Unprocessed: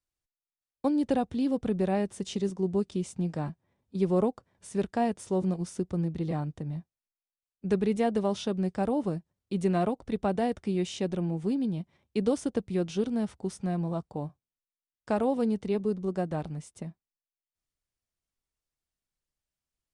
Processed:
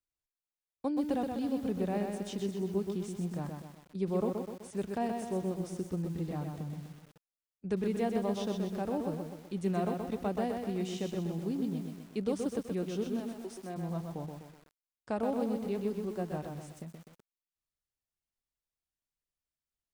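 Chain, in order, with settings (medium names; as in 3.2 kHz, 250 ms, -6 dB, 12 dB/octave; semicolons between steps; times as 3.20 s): 13.19–13.76 s: high-pass 460 Hz -> 210 Hz 24 dB/octave; bit-crushed delay 126 ms, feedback 55%, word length 8-bit, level -4.5 dB; trim -6.5 dB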